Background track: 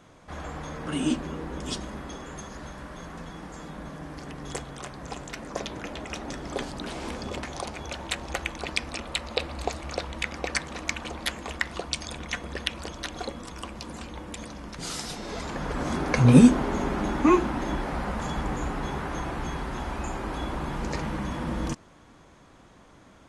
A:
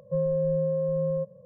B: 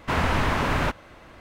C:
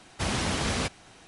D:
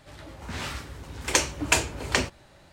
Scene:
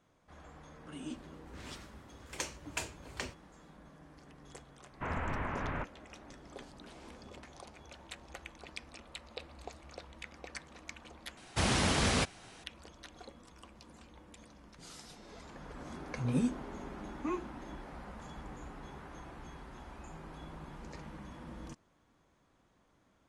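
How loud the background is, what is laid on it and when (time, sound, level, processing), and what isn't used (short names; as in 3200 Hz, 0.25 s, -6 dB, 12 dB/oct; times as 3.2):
background track -17 dB
1.05 add D -16.5 dB
4.93 add B -13 dB + LPF 2400 Hz 24 dB/oct
11.37 replace with C -1 dB
19.98 add A -16 dB + inverse Chebyshev low-pass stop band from 800 Hz, stop band 80 dB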